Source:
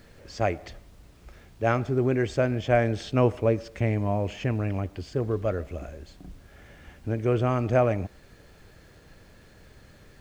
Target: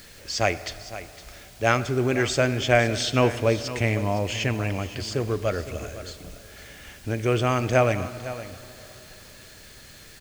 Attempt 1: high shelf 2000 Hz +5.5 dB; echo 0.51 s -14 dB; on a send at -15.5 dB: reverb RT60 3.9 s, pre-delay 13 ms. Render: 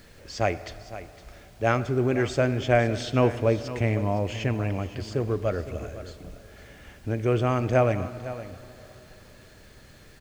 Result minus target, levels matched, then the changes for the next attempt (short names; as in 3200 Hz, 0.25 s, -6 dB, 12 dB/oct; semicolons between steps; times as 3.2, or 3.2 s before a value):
4000 Hz band -7.0 dB
change: high shelf 2000 Hz +17 dB